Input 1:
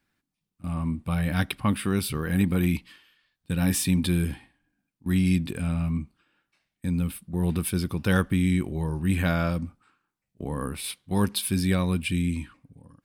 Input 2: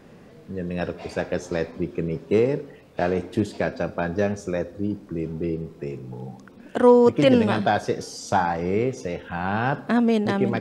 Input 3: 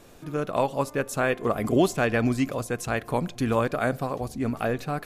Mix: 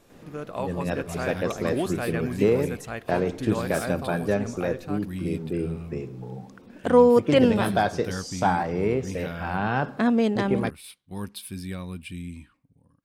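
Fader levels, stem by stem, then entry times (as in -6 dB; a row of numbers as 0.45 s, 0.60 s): -10.5 dB, -1.5 dB, -7.0 dB; 0.00 s, 0.10 s, 0.00 s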